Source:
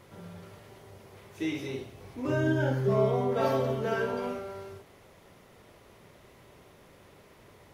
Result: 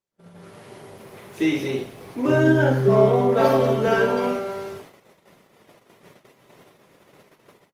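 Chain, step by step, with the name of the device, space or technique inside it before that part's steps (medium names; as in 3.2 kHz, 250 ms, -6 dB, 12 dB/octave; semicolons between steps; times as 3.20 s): video call (high-pass 130 Hz 24 dB/octave; level rider gain up to 11 dB; gate -43 dBFS, range -38 dB; Opus 24 kbps 48 kHz)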